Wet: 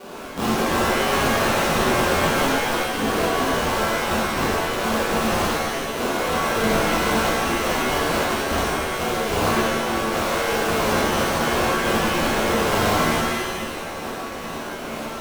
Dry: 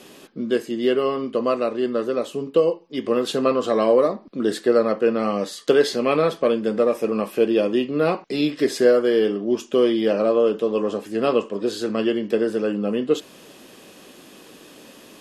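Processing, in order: weighting filter D; low-pass opened by the level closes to 1500 Hz, open at -14.5 dBFS; HPF 48 Hz 24 dB/oct; high shelf 3900 Hz +10.5 dB; negative-ratio compressor -27 dBFS, ratio -1; LFO low-pass saw up 2.2 Hz 810–3000 Hz; sample-rate reducer 1900 Hz, jitter 20%; wrapped overs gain 18.5 dB; shimmer reverb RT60 1.2 s, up +7 st, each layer -2 dB, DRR -6.5 dB; gain -4.5 dB

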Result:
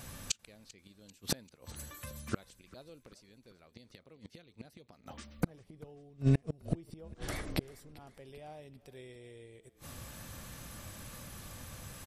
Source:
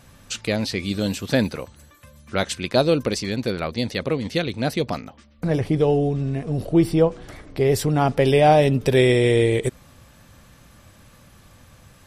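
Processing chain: high shelf 6800 Hz +9 dB; flipped gate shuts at -17 dBFS, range -36 dB; frequency-shifting echo 0.392 s, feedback 54%, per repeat -32 Hz, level -21 dB; gain +1 dB

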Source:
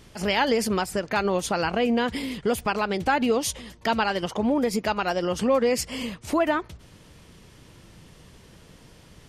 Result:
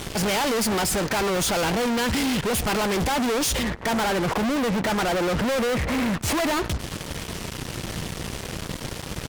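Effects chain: 3.63–6.21 steep low-pass 2200 Hz; fuzz box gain 48 dB, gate -50 dBFS; outdoor echo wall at 20 m, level -25 dB; gain -9 dB

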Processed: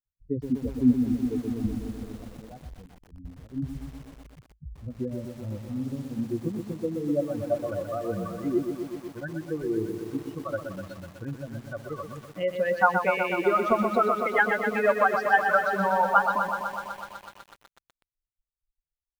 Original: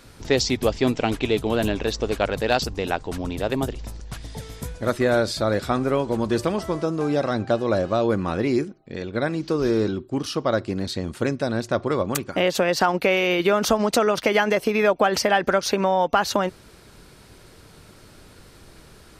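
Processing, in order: per-bin expansion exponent 3; low-pass sweep 240 Hz -> 1500 Hz, 6.27–7.79; lo-fi delay 0.124 s, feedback 80%, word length 8-bit, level -6.5 dB

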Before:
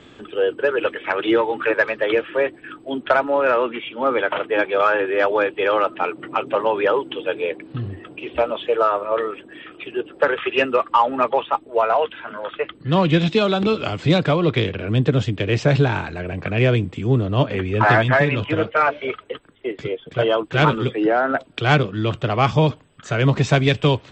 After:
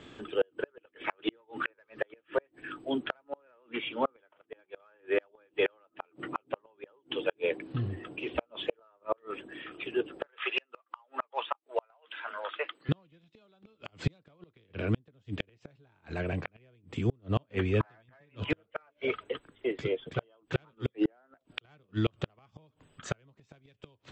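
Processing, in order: 10.26–12.89 HPF 670 Hz 12 dB/oct; flipped gate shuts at -11 dBFS, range -40 dB; gain -5 dB

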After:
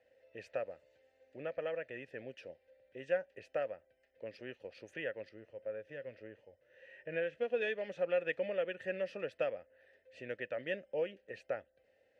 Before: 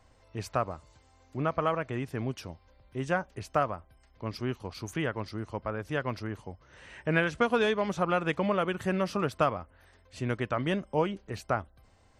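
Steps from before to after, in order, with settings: 5.29–7.62 harmonic-percussive split percussive -12 dB; dynamic EQ 470 Hz, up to -5 dB, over -40 dBFS, Q 0.84; vowel filter e; gain +5 dB

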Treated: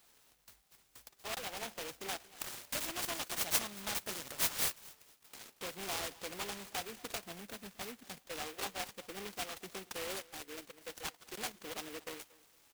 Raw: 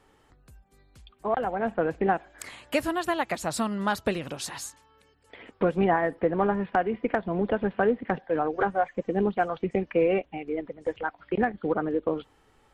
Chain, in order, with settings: CVSD 64 kbps; spectral gain 7.32–8.27, 280–10000 Hz -7 dB; soft clip -24 dBFS, distortion -10 dB; pre-emphasis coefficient 0.97; feedback echo 0.231 s, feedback 27%, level -21 dB; noise-modulated delay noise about 2000 Hz, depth 0.19 ms; gain +7 dB

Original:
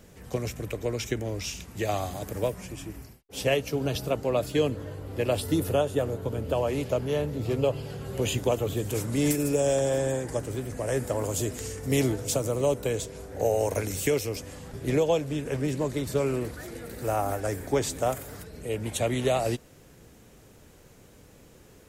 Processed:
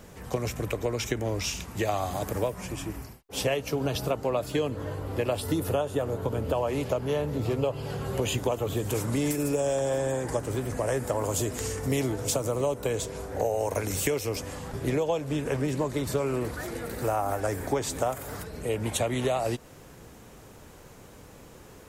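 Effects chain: bell 1000 Hz +6 dB 1.1 oct; compressor 4:1, threshold -28 dBFS, peak gain reduction 9.5 dB; gain +3.5 dB

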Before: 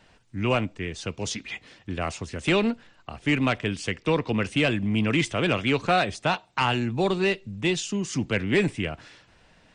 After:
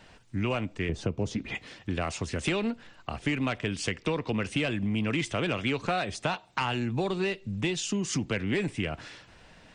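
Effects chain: 0.89–1.55 tilt shelf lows +9 dB, about 1100 Hz; compressor, threshold -29 dBFS, peak gain reduction 11.5 dB; soft clip -17.5 dBFS, distortion -29 dB; gain +3.5 dB

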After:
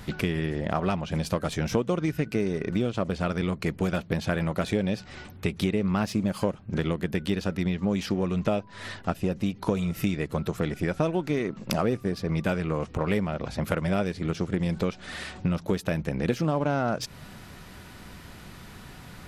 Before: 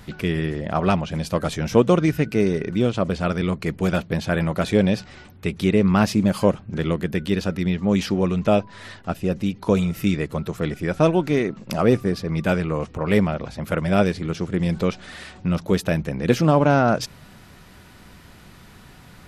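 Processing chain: in parallel at -7.5 dB: crossover distortion -29 dBFS; on the sum: compressor 5:1, threshold -25 dBFS, peak gain reduction 16.5 dB; gain +1.5 dB

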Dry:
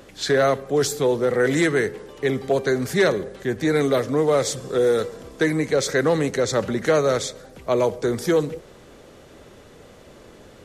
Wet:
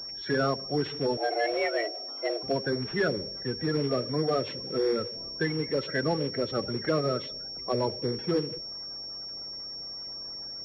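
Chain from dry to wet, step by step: bin magnitudes rounded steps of 30 dB; 1.17–2.43 frequency shift +220 Hz; pulse-width modulation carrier 5500 Hz; gain -7.5 dB

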